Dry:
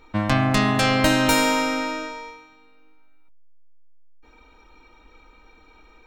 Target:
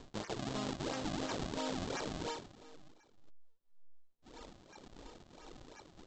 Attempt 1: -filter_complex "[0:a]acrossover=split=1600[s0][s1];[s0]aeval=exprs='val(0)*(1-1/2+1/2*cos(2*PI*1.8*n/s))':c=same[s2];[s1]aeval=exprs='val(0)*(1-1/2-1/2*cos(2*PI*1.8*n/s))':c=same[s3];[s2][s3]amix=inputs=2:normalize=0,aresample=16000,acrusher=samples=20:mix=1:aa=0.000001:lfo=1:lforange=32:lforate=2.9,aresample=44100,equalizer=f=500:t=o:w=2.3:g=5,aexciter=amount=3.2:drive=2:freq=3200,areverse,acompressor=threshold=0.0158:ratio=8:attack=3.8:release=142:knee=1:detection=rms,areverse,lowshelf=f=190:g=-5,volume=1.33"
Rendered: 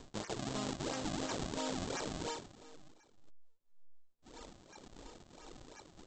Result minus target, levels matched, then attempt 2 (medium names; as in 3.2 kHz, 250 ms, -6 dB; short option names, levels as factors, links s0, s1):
8 kHz band +4.0 dB
-filter_complex "[0:a]acrossover=split=1600[s0][s1];[s0]aeval=exprs='val(0)*(1-1/2+1/2*cos(2*PI*1.8*n/s))':c=same[s2];[s1]aeval=exprs='val(0)*(1-1/2-1/2*cos(2*PI*1.8*n/s))':c=same[s3];[s2][s3]amix=inputs=2:normalize=0,aresample=16000,acrusher=samples=20:mix=1:aa=0.000001:lfo=1:lforange=32:lforate=2.9,aresample=44100,lowpass=6000,equalizer=f=500:t=o:w=2.3:g=5,aexciter=amount=3.2:drive=2:freq=3200,areverse,acompressor=threshold=0.0158:ratio=8:attack=3.8:release=142:knee=1:detection=rms,areverse,lowshelf=f=190:g=-5,volume=1.33"